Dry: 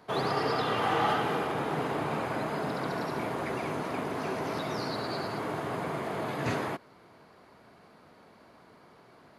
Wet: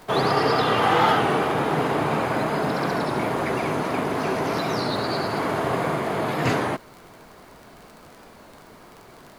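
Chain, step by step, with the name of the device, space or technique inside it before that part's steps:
0:05.26–0:05.94: flutter between parallel walls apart 11 metres, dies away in 0.62 s
warped LP (wow of a warped record 33 1/3 rpm, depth 100 cents; surface crackle 36 per second −43 dBFS; pink noise bed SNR 31 dB)
level +8.5 dB

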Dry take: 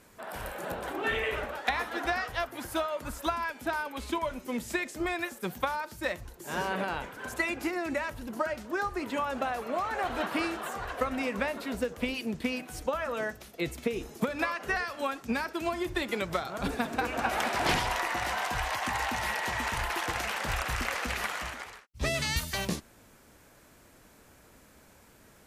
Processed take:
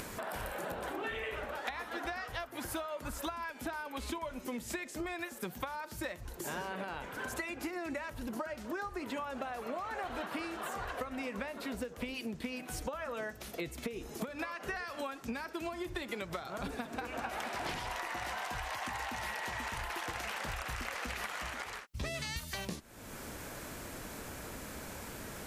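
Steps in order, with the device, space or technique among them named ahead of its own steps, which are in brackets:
upward and downward compression (upward compression, threshold −32 dBFS; downward compressor, threshold −36 dBFS, peak gain reduction 13 dB)

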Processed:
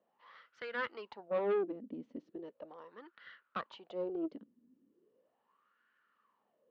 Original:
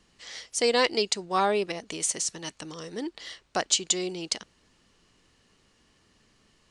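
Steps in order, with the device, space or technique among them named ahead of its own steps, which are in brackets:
wah-wah guitar rig (LFO wah 0.38 Hz 250–1,500 Hz, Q 8.5; tube saturation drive 37 dB, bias 0.55; loudspeaker in its box 100–3,700 Hz, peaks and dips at 220 Hz +7 dB, 520 Hz +5 dB, 750 Hz −5 dB, 2,200 Hz −3 dB)
level +7.5 dB

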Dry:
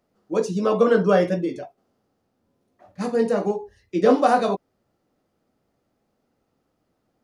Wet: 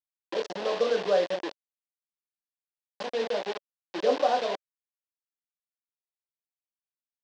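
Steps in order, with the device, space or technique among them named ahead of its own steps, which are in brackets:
hand-held game console (bit reduction 4 bits; loudspeaker in its box 430–4,800 Hz, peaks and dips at 570 Hz +5 dB, 1,300 Hz −9 dB, 2,200 Hz −5 dB)
level −7 dB

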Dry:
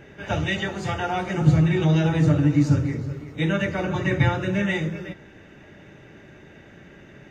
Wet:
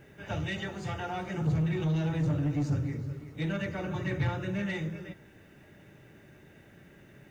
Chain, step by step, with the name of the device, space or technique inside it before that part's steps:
open-reel tape (soft clipping −16 dBFS, distortion −13 dB; parametric band 120 Hz +3.5 dB 1.13 octaves; white noise bed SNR 42 dB)
level −9 dB

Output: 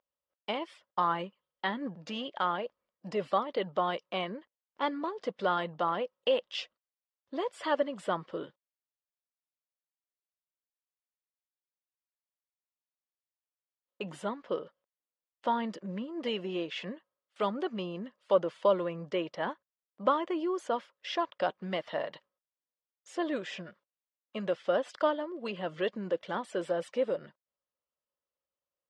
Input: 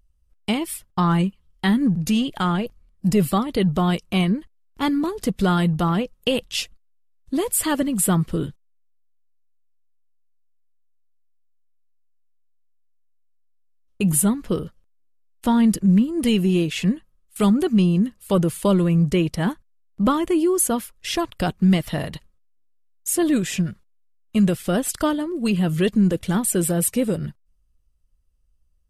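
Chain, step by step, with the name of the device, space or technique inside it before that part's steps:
phone earpiece (loudspeaker in its box 500–4,300 Hz, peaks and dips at 560 Hz +9 dB, 1,000 Hz +4 dB, 2,500 Hz −5 dB, 4,100 Hz −6 dB)
level −6.5 dB

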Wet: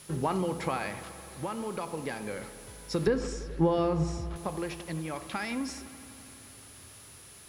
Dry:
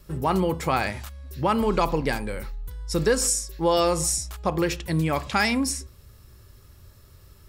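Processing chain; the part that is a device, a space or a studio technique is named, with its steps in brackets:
medium wave at night (band-pass filter 130–4,400 Hz; downward compressor, threshold −25 dBFS, peak gain reduction 9 dB; amplitude tremolo 0.3 Hz, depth 56%; steady tone 10,000 Hz −50 dBFS; white noise bed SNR 17 dB)
0:03.07–0:04.36: RIAA equalisation playback
low-pass filter 11,000 Hz 12 dB per octave
delay with a low-pass on its return 85 ms, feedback 84%, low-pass 2,800 Hz, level −16 dB

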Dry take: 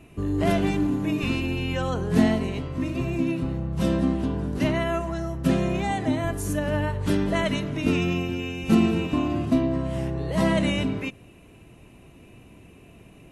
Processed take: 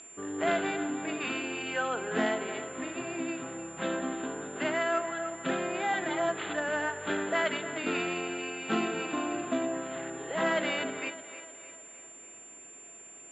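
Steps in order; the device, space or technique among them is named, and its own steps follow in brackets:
0:05.93–0:06.34: comb filter 5.7 ms, depth 94%
echo with a time of its own for lows and highs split 340 Hz, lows 123 ms, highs 306 ms, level −13 dB
toy sound module (linearly interpolated sample-rate reduction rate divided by 6×; switching amplifier with a slow clock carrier 7,200 Hz; loudspeaker in its box 550–4,300 Hz, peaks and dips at 580 Hz −4 dB, 1,000 Hz −5 dB, 1,500 Hz +6 dB, 3,500 Hz +6 dB)
level +1.5 dB

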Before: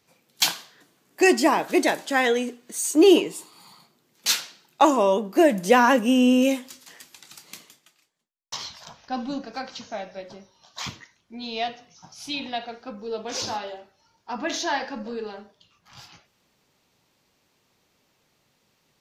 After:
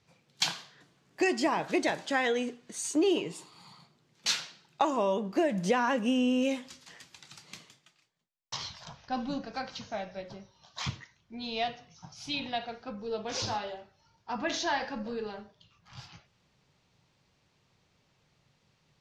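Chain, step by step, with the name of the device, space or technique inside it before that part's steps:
jukebox (low-pass filter 6,200 Hz 12 dB per octave; low shelf with overshoot 190 Hz +6.5 dB, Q 1.5; downward compressor 4 to 1, threshold −21 dBFS, peak gain reduction 9 dB)
level −3 dB

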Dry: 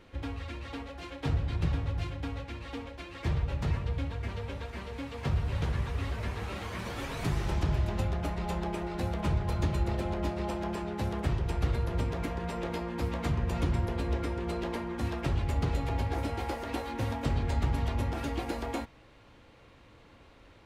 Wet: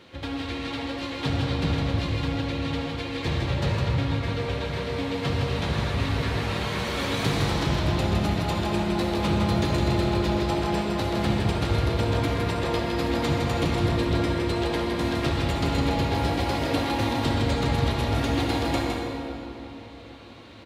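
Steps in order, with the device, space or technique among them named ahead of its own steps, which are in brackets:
PA in a hall (high-pass filter 110 Hz 12 dB per octave; parametric band 3,900 Hz +7.5 dB 0.75 octaves; single-tap delay 160 ms −5 dB; convolution reverb RT60 3.0 s, pre-delay 53 ms, DRR 1 dB)
level +5.5 dB

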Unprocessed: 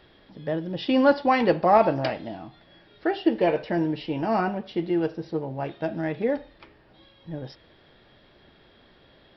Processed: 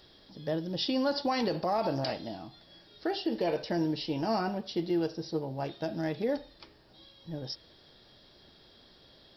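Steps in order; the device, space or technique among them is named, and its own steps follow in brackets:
over-bright horn tweeter (high shelf with overshoot 3,500 Hz +12.5 dB, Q 1.5; brickwall limiter −17 dBFS, peak gain reduction 10.5 dB)
level −4 dB

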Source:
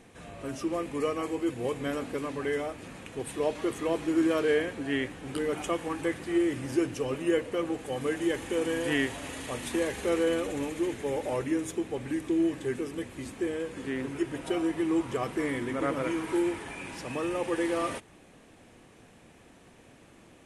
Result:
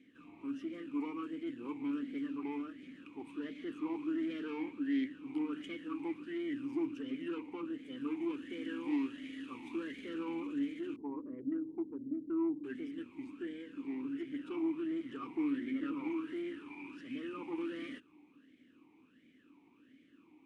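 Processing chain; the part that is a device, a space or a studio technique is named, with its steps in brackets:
0:10.96–0:12.64: Butterworth low-pass 580 Hz 36 dB per octave
talk box (tube saturation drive 28 dB, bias 0.7; formant filter swept between two vowels i-u 1.4 Hz)
level +5.5 dB

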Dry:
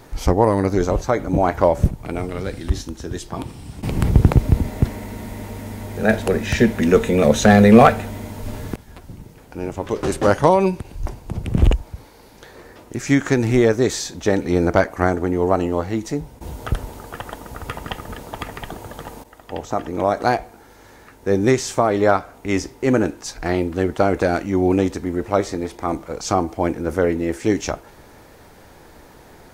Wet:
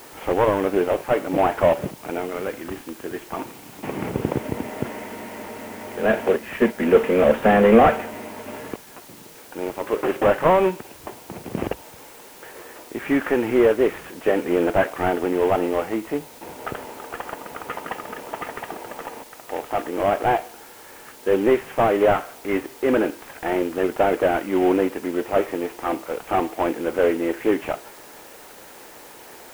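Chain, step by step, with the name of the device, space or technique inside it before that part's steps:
0:06.36–0:06.80: noise gate −15 dBFS, range −9 dB
army field radio (band-pass filter 340–2,900 Hz; variable-slope delta modulation 16 kbit/s; white noise bed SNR 24 dB)
level +3 dB

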